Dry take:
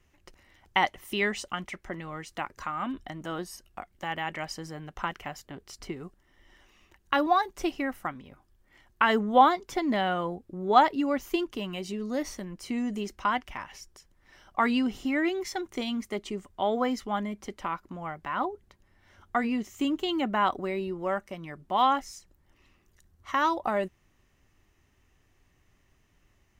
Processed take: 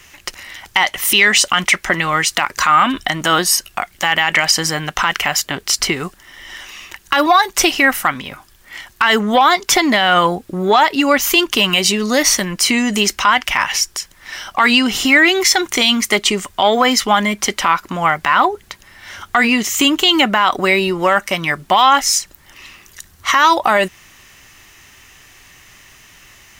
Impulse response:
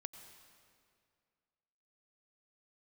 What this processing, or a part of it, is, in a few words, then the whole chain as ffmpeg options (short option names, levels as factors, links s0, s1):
mastering chain: -af "equalizer=f=150:t=o:w=1.5:g=4,acompressor=threshold=0.0398:ratio=2.5,asoftclip=type=tanh:threshold=0.158,tiltshelf=f=780:g=-10,asoftclip=type=hard:threshold=0.251,alimiter=level_in=12.6:limit=0.891:release=50:level=0:latency=1,volume=0.891"